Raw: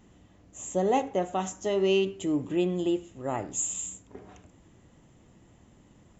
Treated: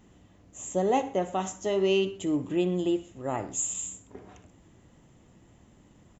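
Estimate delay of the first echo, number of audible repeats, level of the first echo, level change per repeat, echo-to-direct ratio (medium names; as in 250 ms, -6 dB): 61 ms, 2, -17.0 dB, -5.5 dB, -16.0 dB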